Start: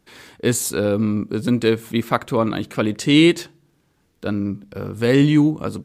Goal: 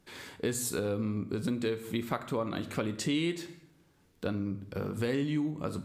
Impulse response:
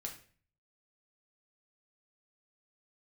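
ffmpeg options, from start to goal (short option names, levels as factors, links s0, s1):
-filter_complex "[0:a]asplit=2[s0][s1];[1:a]atrim=start_sample=2205,asetrate=36603,aresample=44100[s2];[s1][s2]afir=irnorm=-1:irlink=0,volume=0.75[s3];[s0][s3]amix=inputs=2:normalize=0,acompressor=threshold=0.0631:ratio=4,volume=0.473"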